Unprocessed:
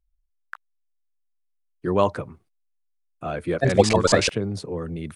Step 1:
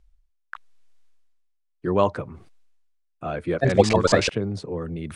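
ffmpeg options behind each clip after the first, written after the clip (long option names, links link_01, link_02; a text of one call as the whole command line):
ffmpeg -i in.wav -af "lowpass=9400,highshelf=frequency=5200:gain=-5.5,areverse,acompressor=mode=upward:threshold=-35dB:ratio=2.5,areverse" out.wav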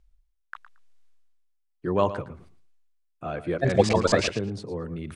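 ffmpeg -i in.wav -af "aecho=1:1:113|226:0.2|0.0339,volume=-3dB" out.wav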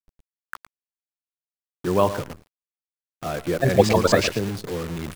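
ffmpeg -i in.wav -af "acrusher=bits=7:dc=4:mix=0:aa=0.000001,volume=3.5dB" out.wav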